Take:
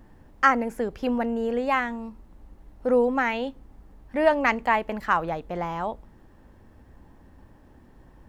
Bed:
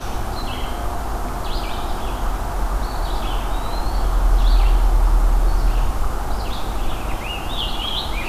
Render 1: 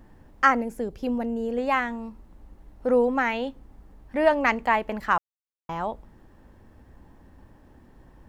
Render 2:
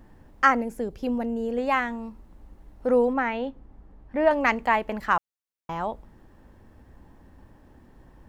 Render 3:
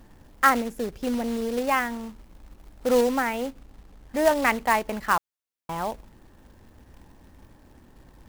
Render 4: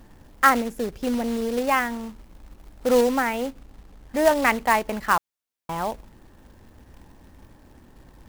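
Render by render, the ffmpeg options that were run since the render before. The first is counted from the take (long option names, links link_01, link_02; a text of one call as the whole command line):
ffmpeg -i in.wav -filter_complex "[0:a]asettb=1/sr,asplit=3[link_01][link_02][link_03];[link_01]atrim=end=0.614[link_04];[link_02]atrim=start=0.61:end=1.58,asetpts=PTS-STARTPTS,afade=type=in:duration=0.004:curve=qsin,afade=type=out:start_time=0.966:duration=0.004:curve=qsin,equalizer=frequency=1500:width=0.57:gain=-9.5[link_05];[link_03]atrim=start=1.576[link_06];[link_04][link_05]acrossfade=duration=0.004:curve1=hsin:curve2=qsin[link_07];[link_07][link_06]acrossfade=duration=0.004:curve1=qsin:curve2=hsin,asplit=3[link_08][link_09][link_10];[link_08]atrim=end=5.18,asetpts=PTS-STARTPTS,afade=type=out:start_time=5.176:duration=0.004:curve=hsin[link_11];[link_09]atrim=start=5.18:end=5.69,asetpts=PTS-STARTPTS,volume=0[link_12];[link_10]atrim=start=5.69,asetpts=PTS-STARTPTS,afade=type=in:duration=0.004:curve=hsin[link_13];[link_11][link_12][link_13]concat=n=3:v=0:a=1" out.wav
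ffmpeg -i in.wav -filter_complex "[0:a]asettb=1/sr,asplit=3[link_01][link_02][link_03];[link_01]atrim=end=3.134[link_04];[link_02]atrim=start=3.13:end=4.31,asetpts=PTS-STARTPTS,afade=type=in:duration=0.004:curve=qsin,afade=type=out:start_time=1.176:duration=0.004:curve=qsin,lowpass=frequency=1800:poles=1[link_05];[link_03]atrim=start=4.306[link_06];[link_04][link_05]acrossfade=duration=0.004:curve1=hsin:curve2=qsin[link_07];[link_07][link_06]acrossfade=duration=0.004:curve1=qsin:curve2=hsin" out.wav
ffmpeg -i in.wav -af "acrusher=bits=3:mode=log:mix=0:aa=0.000001" out.wav
ffmpeg -i in.wav -af "volume=2dB" out.wav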